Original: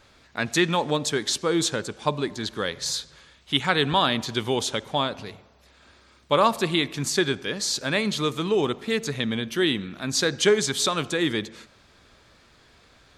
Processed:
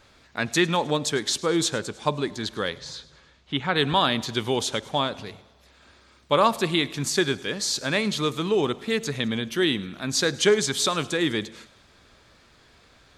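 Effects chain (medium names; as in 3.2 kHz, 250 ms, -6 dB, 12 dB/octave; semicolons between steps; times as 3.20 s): 2.77–3.76 s: tape spacing loss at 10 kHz 21 dB; feedback echo behind a high-pass 104 ms, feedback 60%, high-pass 3.8 kHz, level -18.5 dB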